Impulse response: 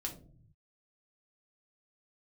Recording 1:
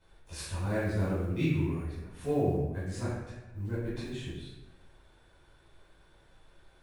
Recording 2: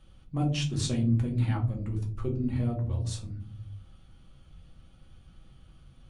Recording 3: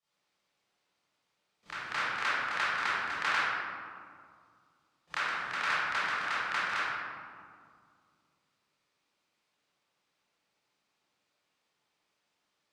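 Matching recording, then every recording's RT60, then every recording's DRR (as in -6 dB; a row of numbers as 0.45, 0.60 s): 2; 1.0, 0.50, 2.1 s; -12.0, 0.0, -16.0 dB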